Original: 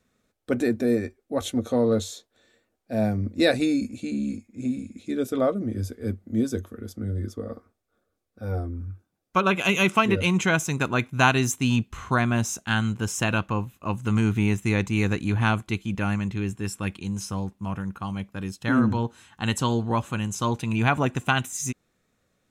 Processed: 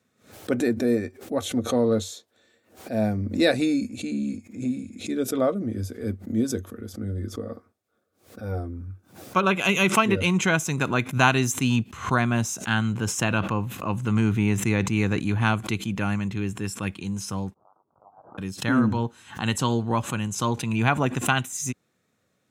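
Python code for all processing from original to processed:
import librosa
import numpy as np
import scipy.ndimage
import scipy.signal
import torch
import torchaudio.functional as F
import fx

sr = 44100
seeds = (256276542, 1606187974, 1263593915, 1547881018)

y = fx.chain(x, sr, fx.high_shelf(hz=4700.0, db=-5.0),
    fx.sustainer(db_per_s=79.0), at=(12.65, 15.2))
y = fx.chain(y, sr, fx.steep_highpass(hz=2900.0, slope=96),
    fx.freq_invert(carrier_hz=3900), at=(17.54, 18.38))
y = scipy.signal.sosfilt(scipy.signal.butter(4, 87.0, 'highpass', fs=sr, output='sos'), y)
y = fx.pre_swell(y, sr, db_per_s=140.0)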